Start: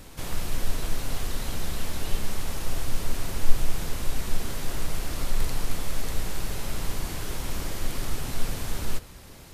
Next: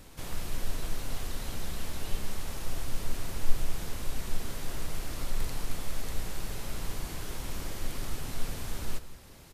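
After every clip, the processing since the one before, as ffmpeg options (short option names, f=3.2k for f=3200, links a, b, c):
-af "aecho=1:1:172:0.15,volume=-5.5dB"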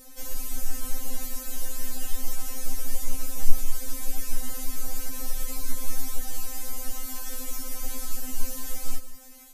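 -af "aexciter=amount=3:drive=5.5:freq=5.5k,afftfilt=real='re*3.46*eq(mod(b,12),0)':imag='im*3.46*eq(mod(b,12),0)':win_size=2048:overlap=0.75,volume=1.5dB"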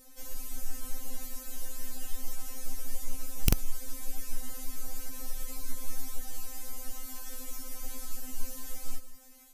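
-af "aeval=exprs='(mod(2.37*val(0)+1,2)-1)/2.37':c=same,volume=-7dB"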